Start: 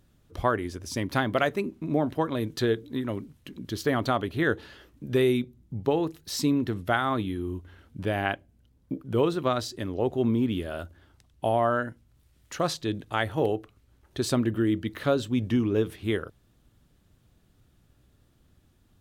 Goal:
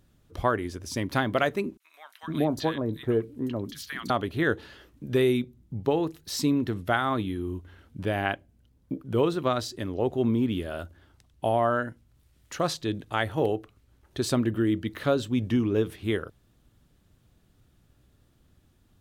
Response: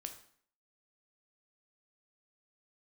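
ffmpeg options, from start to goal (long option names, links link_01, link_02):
-filter_complex "[0:a]asettb=1/sr,asplit=3[link_01][link_02][link_03];[link_01]atrim=end=1.774[link_04];[link_02]atrim=start=1.77:end=4.1,asetpts=PTS-STARTPTS,afade=type=in:duration=0.004:curve=qsin,afade=type=out:start_time=2.326:duration=0.004:curve=qsin,acrossover=split=1300|5600[link_05][link_06][link_07];[link_06]adelay=30[link_08];[link_05]adelay=460[link_09];[link_09][link_08][link_07]amix=inputs=3:normalize=0,atrim=end_sample=102753[link_10];[link_03]atrim=start=4.096[link_11];[link_04][link_10]acrossfade=duration=0.004:curve1=hsin:curve2=qsin[link_12];[link_12][link_11]acrossfade=duration=0.004:curve1=qsin:curve2=hsin"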